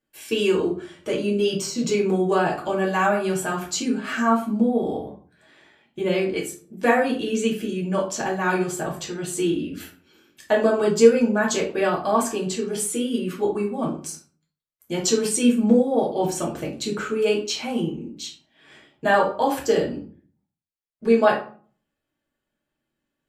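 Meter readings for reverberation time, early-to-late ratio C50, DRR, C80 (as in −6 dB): 0.45 s, 8.0 dB, −3.0 dB, 13.0 dB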